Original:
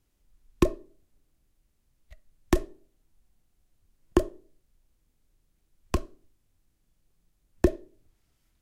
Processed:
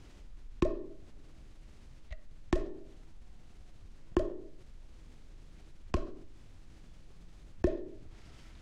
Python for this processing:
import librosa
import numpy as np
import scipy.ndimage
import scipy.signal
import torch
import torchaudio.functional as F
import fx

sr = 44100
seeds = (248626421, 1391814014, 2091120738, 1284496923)

y = fx.air_absorb(x, sr, metres=96.0)
y = fx.env_flatten(y, sr, amount_pct=50)
y = y * 10.0 ** (-8.0 / 20.0)